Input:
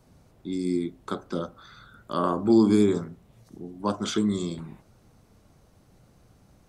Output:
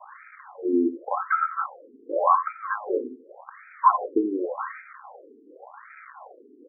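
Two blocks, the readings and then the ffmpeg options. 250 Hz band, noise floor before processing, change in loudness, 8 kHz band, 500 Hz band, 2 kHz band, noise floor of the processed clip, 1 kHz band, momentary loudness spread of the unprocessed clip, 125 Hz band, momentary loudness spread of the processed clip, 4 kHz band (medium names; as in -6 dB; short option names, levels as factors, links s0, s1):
-5.0 dB, -60 dBFS, +0.5 dB, under -35 dB, 0.0 dB, +9.5 dB, -53 dBFS, +11.5 dB, 22 LU, under -30 dB, 22 LU, under -40 dB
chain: -filter_complex "[0:a]equalizer=f=250:t=o:w=1:g=-11,equalizer=f=1000:t=o:w=1:g=7,equalizer=f=2000:t=o:w=1:g=7,asplit=2[s0][s1];[s1]acompressor=threshold=0.0141:ratio=6,volume=1.33[s2];[s0][s2]amix=inputs=2:normalize=0,aecho=1:1:3.8:0.54,acrossover=split=110|1500[s3][s4][s5];[s3]acompressor=threshold=0.00316:ratio=4[s6];[s4]acompressor=threshold=0.0447:ratio=4[s7];[s5]acompressor=threshold=0.02:ratio=4[s8];[s6][s7][s8]amix=inputs=3:normalize=0,asuperstop=centerf=4100:order=12:qfactor=2.3,acrusher=bits=7:mix=0:aa=0.000001,highshelf=f=4700:t=q:w=3:g=13,asplit=2[s9][s10];[s10]aecho=0:1:88:0.15[s11];[s9][s11]amix=inputs=2:normalize=0,alimiter=level_in=3.98:limit=0.891:release=50:level=0:latency=1,afftfilt=real='re*between(b*sr/1024,310*pow(1800/310,0.5+0.5*sin(2*PI*0.88*pts/sr))/1.41,310*pow(1800/310,0.5+0.5*sin(2*PI*0.88*pts/sr))*1.41)':imag='im*between(b*sr/1024,310*pow(1800/310,0.5+0.5*sin(2*PI*0.88*pts/sr))/1.41,310*pow(1800/310,0.5+0.5*sin(2*PI*0.88*pts/sr))*1.41)':win_size=1024:overlap=0.75"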